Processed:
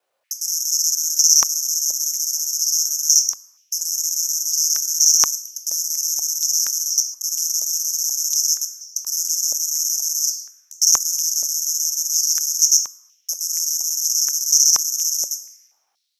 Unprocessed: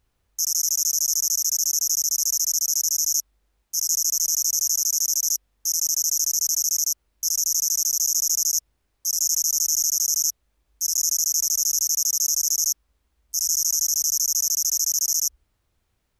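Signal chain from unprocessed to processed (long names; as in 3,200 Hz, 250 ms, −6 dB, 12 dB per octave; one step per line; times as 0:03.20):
reversed piece by piece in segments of 103 ms
on a send at −2 dB: convolution reverb RT60 1.7 s, pre-delay 13 ms
on the sum: flanger 0.91 Hz, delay 8.6 ms, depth 9.4 ms, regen −72%
high-pass on a step sequencer 4.2 Hz 580–5,600 Hz
level +3.5 dB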